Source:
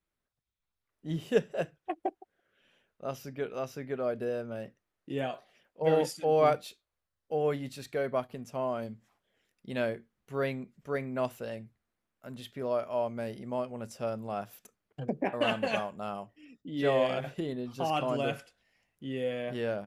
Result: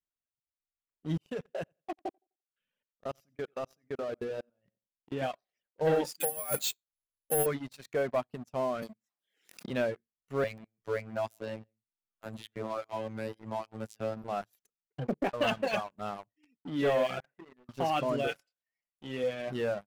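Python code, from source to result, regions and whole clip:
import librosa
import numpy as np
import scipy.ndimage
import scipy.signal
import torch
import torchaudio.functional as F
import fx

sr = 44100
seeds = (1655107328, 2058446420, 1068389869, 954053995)

y = fx.chain(x, sr, fx.level_steps(step_db=18),
    fx.echo_feedback(ms=89, feedback_pct=25, wet_db=-10.0), at=(1.17, 5.22))
y = fx.chain(y, sr, fx.peak_eq(hz=5100.0, db=9.0, octaves=2.7),
    fx.over_compress(threshold_db=-29.0, ratio=-0.5),
    fx.resample_bad(factor=4, down='filtered', up='zero_stuff'), at=(6.2, 7.46))
y = fx.chain(y, sr, fx.highpass(hz=150.0, slope=24),
    fx.high_shelf(hz=3700.0, db=11.0),
    fx.pre_swell(db_per_s=63.0), at=(8.82, 9.7))
y = fx.chain(y, sr, fx.robotise(hz=110.0),
    fx.echo_single(ms=139, db=-16.0),
    fx.band_squash(depth_pct=40), at=(10.44, 14.24))
y = fx.chain(y, sr, fx.ladder_lowpass(hz=2300.0, resonance_pct=35),
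    fx.low_shelf(hz=330.0, db=-10.0),
    fx.hum_notches(base_hz=60, count=7), at=(17.2, 17.69))
y = fx.chain(y, sr, fx.low_shelf(hz=200.0, db=-9.0),
    fx.doubler(ms=24.0, db=-7.0), at=(18.27, 19.24))
y = fx.dereverb_blind(y, sr, rt60_s=1.0)
y = fx.high_shelf(y, sr, hz=5900.0, db=-5.5)
y = fx.leveller(y, sr, passes=3)
y = F.gain(torch.from_numpy(y), -9.0).numpy()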